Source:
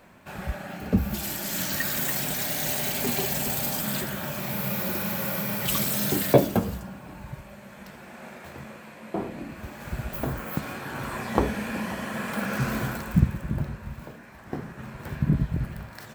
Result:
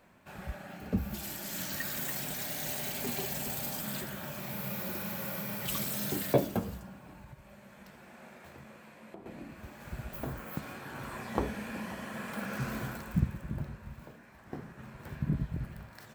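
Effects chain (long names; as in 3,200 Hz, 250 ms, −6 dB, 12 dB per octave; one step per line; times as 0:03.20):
0:07.10–0:09.26: downward compressor 12 to 1, threshold −37 dBFS, peak gain reduction 12.5 dB
level −8.5 dB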